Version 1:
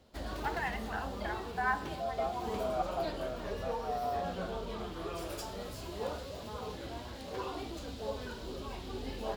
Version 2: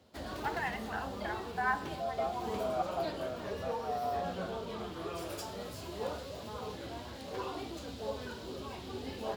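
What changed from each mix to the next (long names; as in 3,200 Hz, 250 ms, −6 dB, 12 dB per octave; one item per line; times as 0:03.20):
master: add high-pass filter 70 Hz 24 dB per octave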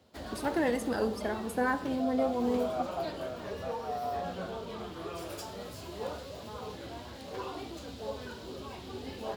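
first voice: remove linear-phase brick-wall band-pass 660–3,200 Hz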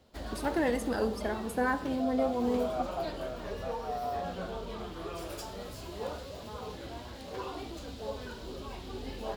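master: remove high-pass filter 70 Hz 24 dB per octave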